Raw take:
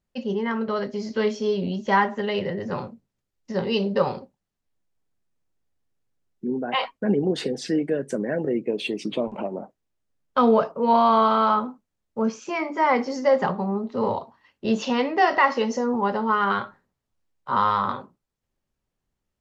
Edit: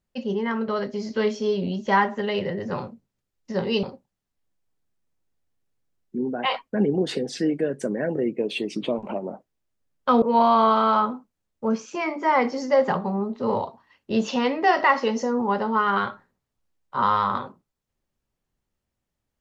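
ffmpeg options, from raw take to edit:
ffmpeg -i in.wav -filter_complex "[0:a]asplit=3[link_01][link_02][link_03];[link_01]atrim=end=3.832[link_04];[link_02]atrim=start=4.118:end=10.512[link_05];[link_03]atrim=start=10.758[link_06];[link_04][link_05]acrossfade=duration=0.004:curve1=hsin:curve2=hsin[link_07];[link_07][link_06]acrossfade=duration=0.004:curve1=hsin:curve2=hsin" out.wav

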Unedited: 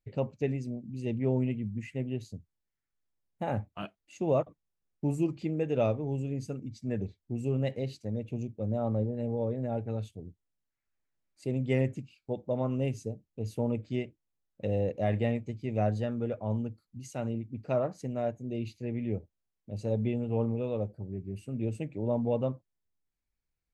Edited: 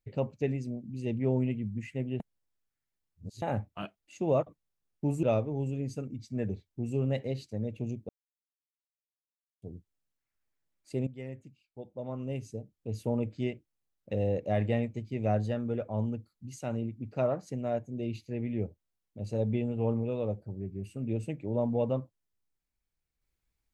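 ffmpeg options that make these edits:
ffmpeg -i in.wav -filter_complex "[0:a]asplit=7[link_01][link_02][link_03][link_04][link_05][link_06][link_07];[link_01]atrim=end=2.202[link_08];[link_02]atrim=start=2.198:end=3.422,asetpts=PTS-STARTPTS,areverse[link_09];[link_03]atrim=start=3.418:end=5.232[link_10];[link_04]atrim=start=5.748:end=8.61,asetpts=PTS-STARTPTS,afade=type=out:start_time=2.858:duration=0.004:curve=hsin[link_11];[link_05]atrim=start=8.61:end=10.14,asetpts=PTS-STARTPTS,volume=0[link_12];[link_06]atrim=start=10.14:end=11.59,asetpts=PTS-STARTPTS,afade=type=in:duration=0.004:curve=hsin,afade=type=out:start_time=1.446:duration=0.004:curve=hsin:silence=0.188365[link_13];[link_07]atrim=start=11.59,asetpts=PTS-STARTPTS,afade=type=in:duration=1.88:curve=qua:silence=0.188365[link_14];[link_08][link_09]acrossfade=duration=0.004:curve1=hsin:curve2=hsin[link_15];[link_15][link_10]acrossfade=duration=0.004:curve1=hsin:curve2=hsin[link_16];[link_11][link_12][link_13][link_14]concat=n=4:v=0:a=1[link_17];[link_16][link_17]acrossfade=duration=0.004:curve1=hsin:curve2=hsin" out.wav

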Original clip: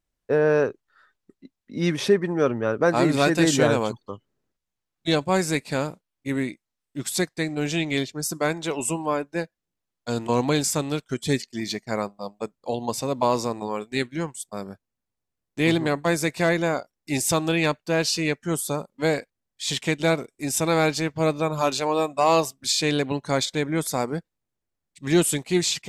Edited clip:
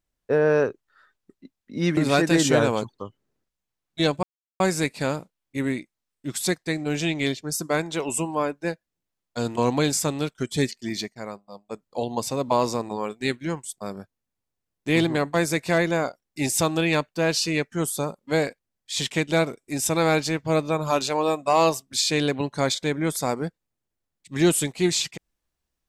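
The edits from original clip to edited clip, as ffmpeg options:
ffmpeg -i in.wav -filter_complex "[0:a]asplit=5[link_01][link_02][link_03][link_04][link_05];[link_01]atrim=end=1.972[link_06];[link_02]atrim=start=3.048:end=5.31,asetpts=PTS-STARTPTS,afade=type=out:start_time=2.258:duration=0.004:curve=hsin,apad=pad_dur=0.37[link_07];[link_03]atrim=start=5.31:end=11.87,asetpts=PTS-STARTPTS,afade=type=in:duration=0.004:curve=hsin,afade=type=out:start_time=6.39:duration=0.17:silence=0.375837[link_08];[link_04]atrim=start=11.87:end=12.37,asetpts=PTS-STARTPTS,volume=-8.5dB[link_09];[link_05]atrim=start=12.37,asetpts=PTS-STARTPTS,afade=type=in:duration=0.17:silence=0.375837[link_10];[link_07][link_08][link_09][link_10]concat=n=4:v=0:a=1[link_11];[link_06][link_11]acrossfade=duration=0.004:curve1=hsin:curve2=hsin" out.wav

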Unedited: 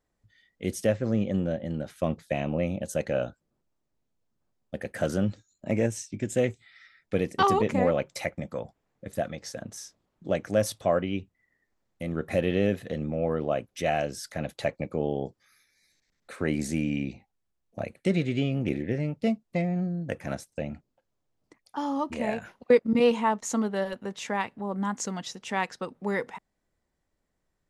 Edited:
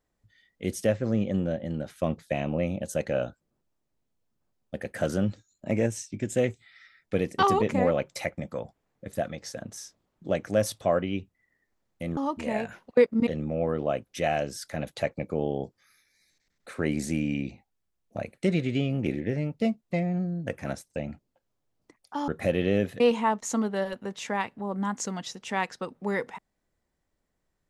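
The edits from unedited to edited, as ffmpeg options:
ffmpeg -i in.wav -filter_complex "[0:a]asplit=5[link_01][link_02][link_03][link_04][link_05];[link_01]atrim=end=12.172[link_06];[link_02]atrim=start=21.898:end=23.002[link_07];[link_03]atrim=start=12.888:end=21.902[link_08];[link_04]atrim=start=12.168:end=12.892[link_09];[link_05]atrim=start=22.998[link_10];[link_06][link_07]acrossfade=duration=0.004:curve1=hsin:curve2=hsin[link_11];[link_11][link_08]acrossfade=duration=0.004:curve1=hsin:curve2=hsin[link_12];[link_12][link_09]acrossfade=duration=0.004:curve1=hsin:curve2=hsin[link_13];[link_13][link_10]acrossfade=duration=0.004:curve1=hsin:curve2=hsin" out.wav

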